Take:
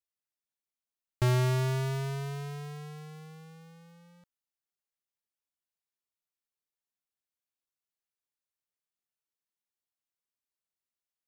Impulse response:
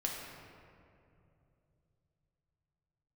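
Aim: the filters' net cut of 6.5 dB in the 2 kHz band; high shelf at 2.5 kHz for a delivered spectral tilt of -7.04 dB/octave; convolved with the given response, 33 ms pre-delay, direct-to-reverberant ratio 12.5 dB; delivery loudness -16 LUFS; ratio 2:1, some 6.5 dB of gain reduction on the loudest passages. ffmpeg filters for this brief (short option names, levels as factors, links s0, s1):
-filter_complex "[0:a]equalizer=f=2000:t=o:g=-7,highshelf=f=2500:g=-3,acompressor=threshold=0.0141:ratio=2,asplit=2[s0][s1];[1:a]atrim=start_sample=2205,adelay=33[s2];[s1][s2]afir=irnorm=-1:irlink=0,volume=0.168[s3];[s0][s3]amix=inputs=2:normalize=0,volume=11.9"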